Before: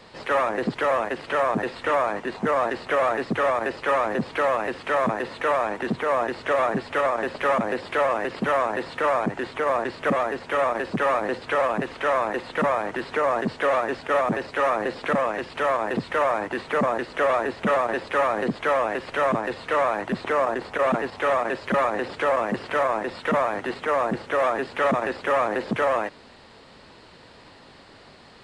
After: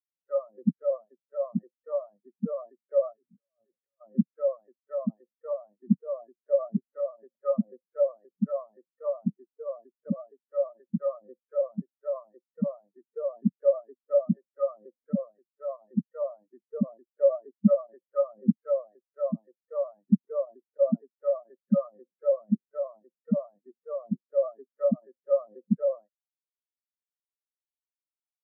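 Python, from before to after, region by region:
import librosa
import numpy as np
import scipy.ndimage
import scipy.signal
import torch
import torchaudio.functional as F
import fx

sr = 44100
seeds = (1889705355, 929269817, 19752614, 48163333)

y = fx.chain(x, sr, fx.hum_notches(base_hz=50, count=6),
    fx.over_compress(threshold_db=-30.0, ratio=-1.0),
    fx.tube_stage(drive_db=19.0, bias=0.65), at=(3.13, 4.01))
y = fx.peak_eq(y, sr, hz=190.0, db=7.5, octaves=0.93)
y = fx.spectral_expand(y, sr, expansion=4.0)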